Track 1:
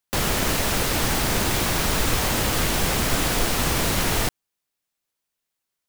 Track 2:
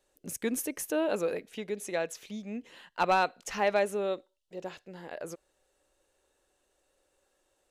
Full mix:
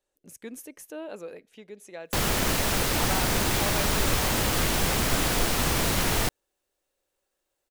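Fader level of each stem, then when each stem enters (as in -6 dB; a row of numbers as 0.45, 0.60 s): -2.5, -9.0 dB; 2.00, 0.00 s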